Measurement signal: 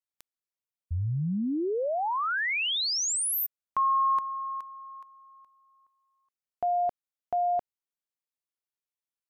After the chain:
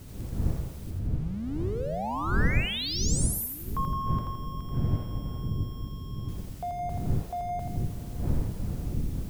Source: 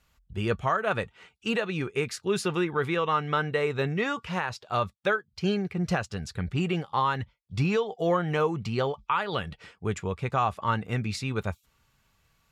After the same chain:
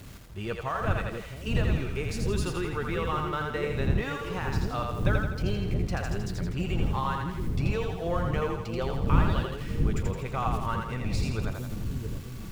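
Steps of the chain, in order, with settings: zero-crossing step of -39 dBFS; wind noise 120 Hz -25 dBFS; split-band echo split 460 Hz, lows 0.671 s, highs 83 ms, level -3.5 dB; gain -7 dB

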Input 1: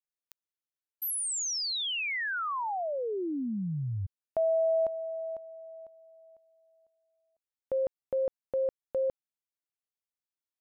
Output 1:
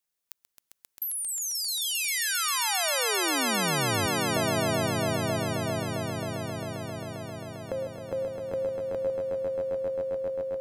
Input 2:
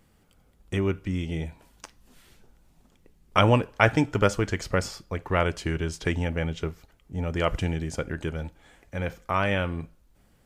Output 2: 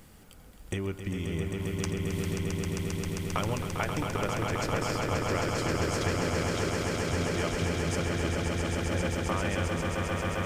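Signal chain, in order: high shelf 5500 Hz +5 dB; compressor 5:1, threshold -41 dBFS; swelling echo 0.133 s, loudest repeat 8, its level -5.5 dB; gain +8 dB

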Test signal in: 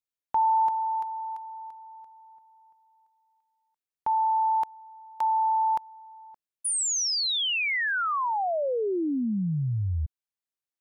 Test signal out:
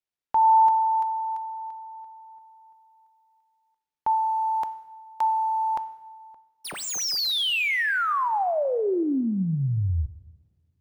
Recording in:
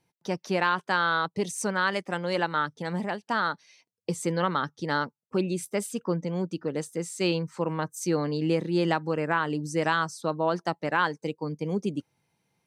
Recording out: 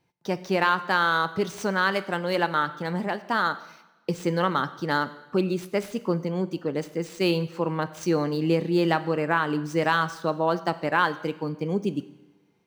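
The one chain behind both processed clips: median filter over 5 samples; two-slope reverb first 0.93 s, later 2.6 s, from -23 dB, DRR 12.5 dB; gain +2.5 dB

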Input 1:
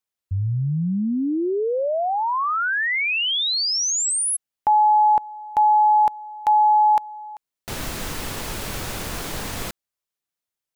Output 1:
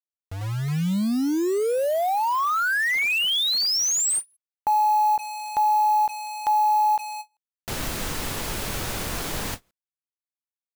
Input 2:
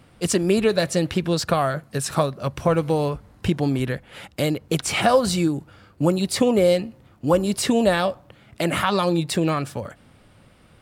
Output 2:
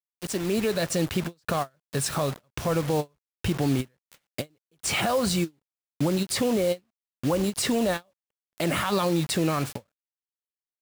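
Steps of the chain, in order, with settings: opening faded in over 0.95 s; limiter -16.5 dBFS; requantised 6-bit, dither none; ending taper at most 490 dB/s

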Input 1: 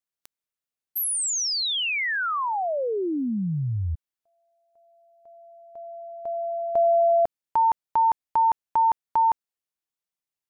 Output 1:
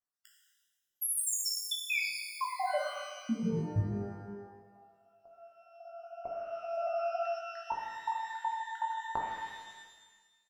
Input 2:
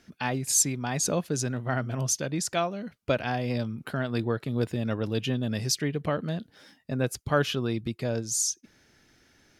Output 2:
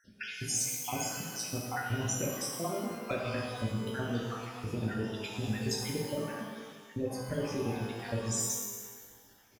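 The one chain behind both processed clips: random spectral dropouts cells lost 64%; high shelf 9900 Hz -6 dB; compressor, threshold -30 dBFS; doubler 18 ms -7 dB; shimmer reverb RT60 1.4 s, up +12 st, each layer -8 dB, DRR -1.5 dB; gain -2.5 dB

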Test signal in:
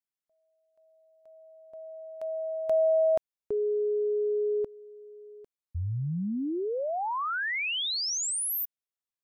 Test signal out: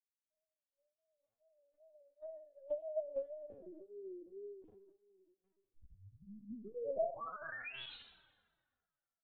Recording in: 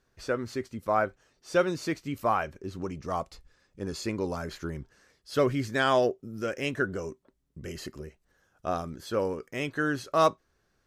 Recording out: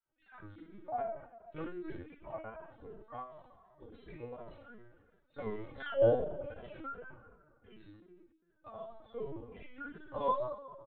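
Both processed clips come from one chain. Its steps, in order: random spectral dropouts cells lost 26%; dynamic EQ 590 Hz, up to +8 dB, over -41 dBFS, Q 1.4; resonator bank B3 major, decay 0.74 s; wow and flutter 120 cents; air absorption 62 m; plate-style reverb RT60 2 s, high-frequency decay 0.55×, DRR 10 dB; frequency shift -36 Hz; LPC vocoder at 8 kHz pitch kept; endless flanger 2.6 ms -2.7 Hz; gain +11 dB

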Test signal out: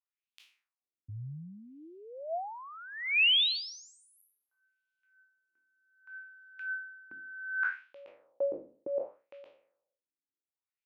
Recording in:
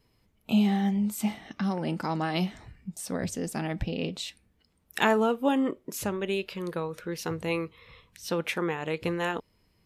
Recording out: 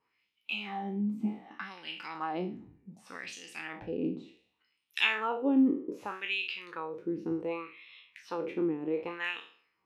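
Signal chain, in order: spectral trails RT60 0.48 s; wah 0.66 Hz 260–3200 Hz, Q 2.5; thirty-one-band EQ 315 Hz +5 dB, 630 Hz -8 dB, 1600 Hz -3 dB, 2500 Hz +5 dB, 8000 Hz -4 dB; gain +2 dB

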